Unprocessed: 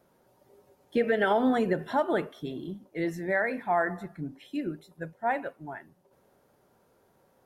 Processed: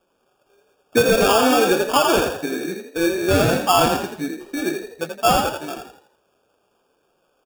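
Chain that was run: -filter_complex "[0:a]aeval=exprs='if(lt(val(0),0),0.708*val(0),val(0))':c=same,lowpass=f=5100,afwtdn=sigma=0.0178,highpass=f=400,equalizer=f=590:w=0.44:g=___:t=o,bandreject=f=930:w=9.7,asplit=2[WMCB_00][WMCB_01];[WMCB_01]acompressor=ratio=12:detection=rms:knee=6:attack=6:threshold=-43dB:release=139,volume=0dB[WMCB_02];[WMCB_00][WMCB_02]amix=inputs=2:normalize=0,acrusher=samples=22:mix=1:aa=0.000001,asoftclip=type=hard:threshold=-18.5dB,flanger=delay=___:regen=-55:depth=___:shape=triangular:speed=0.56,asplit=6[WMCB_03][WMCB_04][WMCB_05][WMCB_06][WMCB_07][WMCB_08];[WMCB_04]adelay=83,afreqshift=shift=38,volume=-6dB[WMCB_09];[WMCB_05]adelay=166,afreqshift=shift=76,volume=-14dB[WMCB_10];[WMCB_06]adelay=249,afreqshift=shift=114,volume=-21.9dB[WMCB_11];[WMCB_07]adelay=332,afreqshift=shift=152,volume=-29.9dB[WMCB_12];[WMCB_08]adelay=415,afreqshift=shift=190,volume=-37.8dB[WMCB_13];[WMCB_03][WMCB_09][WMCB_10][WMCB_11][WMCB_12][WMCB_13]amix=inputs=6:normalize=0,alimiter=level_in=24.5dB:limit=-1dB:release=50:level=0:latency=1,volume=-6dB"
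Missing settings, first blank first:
-4, 5.2, 7.8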